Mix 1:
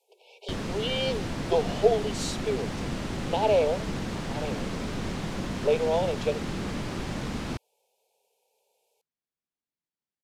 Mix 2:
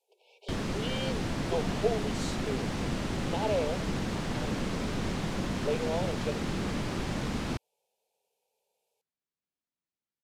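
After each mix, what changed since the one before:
speech -7.5 dB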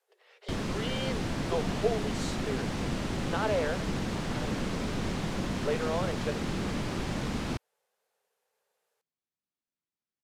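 speech: remove brick-wall FIR band-stop 1000–2200 Hz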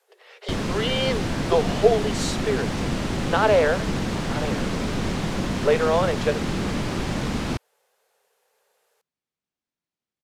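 speech +11.5 dB; background +6.5 dB

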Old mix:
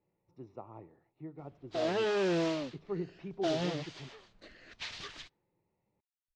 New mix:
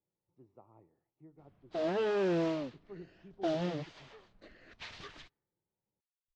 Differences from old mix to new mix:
speech -11.5 dB; master: add high shelf 2500 Hz -10 dB

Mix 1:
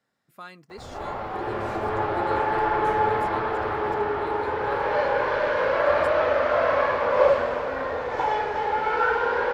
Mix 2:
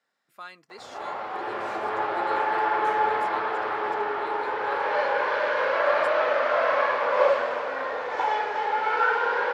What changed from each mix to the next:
master: add weighting filter A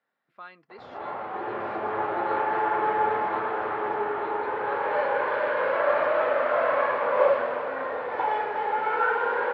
background: add bell 150 Hz +5 dB 2.4 oct; master: add air absorption 350 m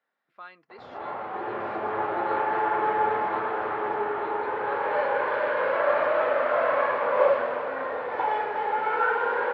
speech: add low shelf 180 Hz -9.5 dB

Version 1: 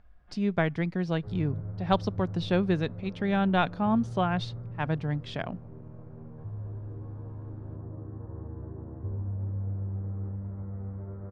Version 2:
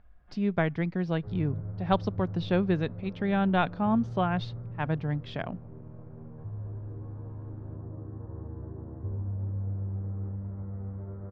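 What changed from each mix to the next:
master: add air absorption 130 m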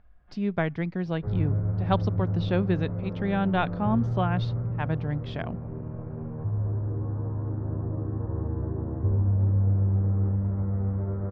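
background +10.0 dB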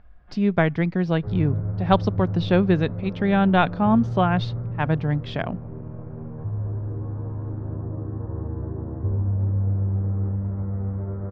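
speech +7.0 dB

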